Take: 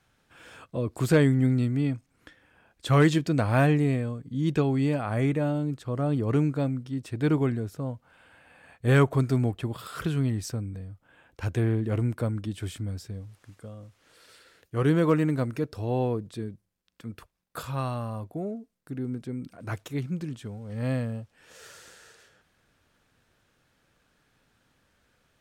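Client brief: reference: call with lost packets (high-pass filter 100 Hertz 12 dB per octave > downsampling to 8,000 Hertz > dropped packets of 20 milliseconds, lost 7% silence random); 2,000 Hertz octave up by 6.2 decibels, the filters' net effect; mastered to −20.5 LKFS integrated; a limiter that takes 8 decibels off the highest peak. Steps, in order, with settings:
parametric band 2,000 Hz +8 dB
brickwall limiter −15 dBFS
high-pass filter 100 Hz 12 dB per octave
downsampling to 8,000 Hz
dropped packets of 20 ms, lost 7% silence random
level +8.5 dB

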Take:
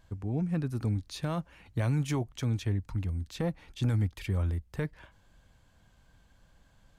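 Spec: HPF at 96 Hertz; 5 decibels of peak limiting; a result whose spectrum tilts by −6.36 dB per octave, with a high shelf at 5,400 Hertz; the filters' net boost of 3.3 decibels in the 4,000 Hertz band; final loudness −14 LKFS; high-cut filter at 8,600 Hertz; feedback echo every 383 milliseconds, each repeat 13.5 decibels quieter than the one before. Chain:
high-pass filter 96 Hz
low-pass filter 8,600 Hz
parametric band 4,000 Hz +5.5 dB
high-shelf EQ 5,400 Hz −3.5 dB
brickwall limiter −24.5 dBFS
repeating echo 383 ms, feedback 21%, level −13.5 dB
level +21.5 dB

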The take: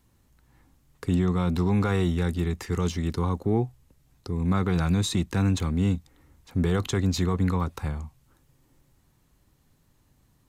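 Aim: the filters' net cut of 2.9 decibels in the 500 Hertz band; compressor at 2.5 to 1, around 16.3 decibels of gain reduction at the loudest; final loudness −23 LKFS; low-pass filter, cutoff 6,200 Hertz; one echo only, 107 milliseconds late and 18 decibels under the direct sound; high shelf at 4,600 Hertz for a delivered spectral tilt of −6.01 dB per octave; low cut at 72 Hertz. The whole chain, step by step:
high-pass filter 72 Hz
low-pass filter 6,200 Hz
parametric band 500 Hz −4 dB
high-shelf EQ 4,600 Hz +6.5 dB
downward compressor 2.5 to 1, threshold −46 dBFS
single-tap delay 107 ms −18 dB
level +19.5 dB

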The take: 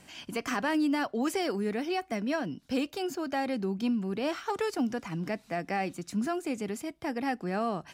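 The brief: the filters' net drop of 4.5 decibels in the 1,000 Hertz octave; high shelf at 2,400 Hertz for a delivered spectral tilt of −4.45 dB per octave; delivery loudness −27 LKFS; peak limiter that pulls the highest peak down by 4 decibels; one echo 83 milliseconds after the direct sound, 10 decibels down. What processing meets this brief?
parametric band 1,000 Hz −7.5 dB
high-shelf EQ 2,400 Hz +5.5 dB
brickwall limiter −23.5 dBFS
single-tap delay 83 ms −10 dB
level +6 dB

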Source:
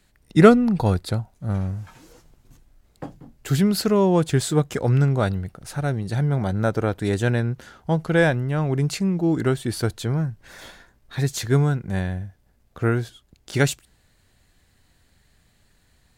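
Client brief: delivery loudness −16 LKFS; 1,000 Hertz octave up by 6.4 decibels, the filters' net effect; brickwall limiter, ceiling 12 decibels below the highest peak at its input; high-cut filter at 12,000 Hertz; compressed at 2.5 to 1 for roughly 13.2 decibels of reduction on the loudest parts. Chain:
low-pass filter 12,000 Hz
parametric band 1,000 Hz +9 dB
downward compressor 2.5 to 1, threshold −25 dBFS
level +17.5 dB
brickwall limiter −6.5 dBFS

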